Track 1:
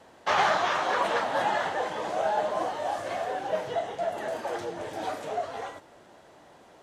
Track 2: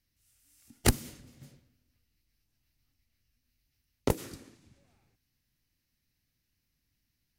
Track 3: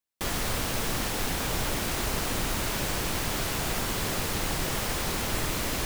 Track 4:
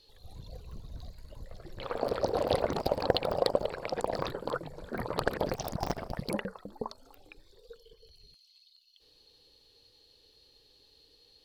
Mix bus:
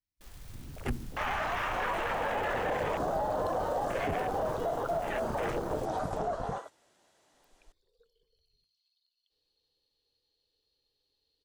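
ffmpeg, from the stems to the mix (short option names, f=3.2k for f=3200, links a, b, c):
-filter_complex "[0:a]equalizer=f=8.4k:w=0.31:g=14.5,alimiter=limit=-21.5dB:level=0:latency=1:release=23,adelay=900,volume=-1dB[a];[1:a]asplit=2[b][c];[c]adelay=6.3,afreqshift=-3[d];[b][d]amix=inputs=2:normalize=1,volume=2.5dB[e];[2:a]aeval=exprs='(mod(13.3*val(0)+1,2)-1)/13.3':c=same,volume=-10dB[f];[3:a]bandreject=f=50:t=h:w=6,bandreject=f=100:t=h:w=6,bandreject=f=150:t=h:w=6,bandreject=f=200:t=h:w=6,bandreject=f=250:t=h:w=6,bandreject=f=300:t=h:w=6,bandreject=f=350:t=h:w=6,bandreject=f=400:t=h:w=6,bandreject=f=450:t=h:w=6,asoftclip=type=hard:threshold=-26dB,adelay=300,volume=-0.5dB,asplit=3[g][h][i];[g]atrim=end=6.58,asetpts=PTS-STARTPTS,afade=t=out:st=6.576:d=0.004:c=hsin[j];[h]atrim=start=6.58:end=7.34,asetpts=PTS-STARTPTS,volume=0[k];[i]atrim=start=7.34,asetpts=PTS-STARTPTS,afade=t=in:d=0.004:c=hsin[l];[j][k][l]concat=n=3:v=0:a=1[m];[a][e][f][m]amix=inputs=4:normalize=0,afwtdn=0.02,alimiter=limit=-23.5dB:level=0:latency=1:release=12"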